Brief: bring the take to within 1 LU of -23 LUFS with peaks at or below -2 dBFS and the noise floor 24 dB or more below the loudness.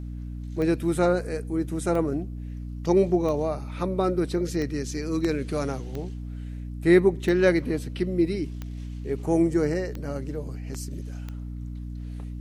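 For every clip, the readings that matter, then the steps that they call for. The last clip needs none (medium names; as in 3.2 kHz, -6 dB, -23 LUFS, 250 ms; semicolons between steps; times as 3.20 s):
clicks found 9; hum 60 Hz; highest harmonic 300 Hz; hum level -32 dBFS; loudness -26.0 LUFS; peak level -5.5 dBFS; loudness target -23.0 LUFS
-> de-click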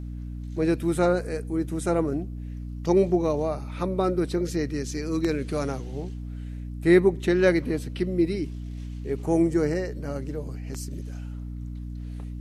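clicks found 0; hum 60 Hz; highest harmonic 300 Hz; hum level -32 dBFS
-> hum notches 60/120/180/240/300 Hz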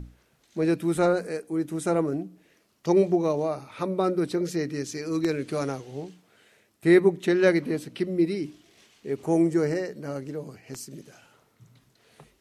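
hum not found; loudness -26.0 LUFS; peak level -6.5 dBFS; loudness target -23.0 LUFS
-> trim +3 dB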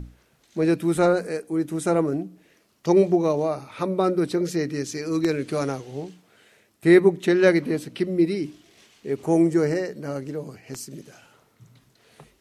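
loudness -23.0 LUFS; peak level -3.5 dBFS; noise floor -63 dBFS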